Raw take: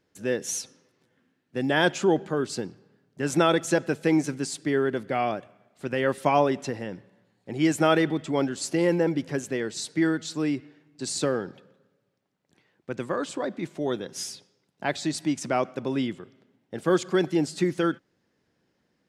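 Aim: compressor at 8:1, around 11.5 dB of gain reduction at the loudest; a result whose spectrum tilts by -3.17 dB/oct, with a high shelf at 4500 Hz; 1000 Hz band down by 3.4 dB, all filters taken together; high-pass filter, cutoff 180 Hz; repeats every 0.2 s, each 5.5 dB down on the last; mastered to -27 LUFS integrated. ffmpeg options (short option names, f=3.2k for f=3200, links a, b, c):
-af "highpass=180,equalizer=f=1k:t=o:g=-5.5,highshelf=f=4.5k:g=7,acompressor=threshold=-30dB:ratio=8,aecho=1:1:200|400|600|800|1000|1200|1400:0.531|0.281|0.149|0.079|0.0419|0.0222|0.0118,volume=7dB"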